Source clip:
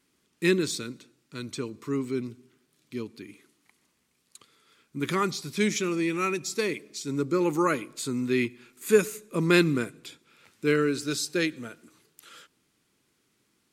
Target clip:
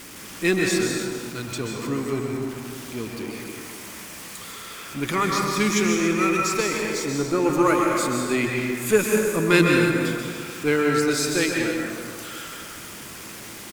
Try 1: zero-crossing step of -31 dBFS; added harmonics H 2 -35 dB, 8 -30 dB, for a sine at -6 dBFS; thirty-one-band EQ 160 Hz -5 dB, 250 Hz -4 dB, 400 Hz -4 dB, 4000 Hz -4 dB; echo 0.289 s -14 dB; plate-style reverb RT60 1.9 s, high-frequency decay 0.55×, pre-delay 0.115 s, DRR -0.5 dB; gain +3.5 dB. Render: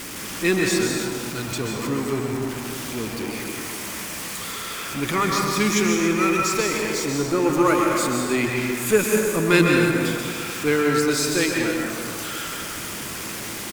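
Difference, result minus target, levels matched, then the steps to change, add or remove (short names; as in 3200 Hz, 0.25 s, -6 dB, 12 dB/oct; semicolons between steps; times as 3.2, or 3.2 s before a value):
zero-crossing step: distortion +6 dB
change: zero-crossing step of -38 dBFS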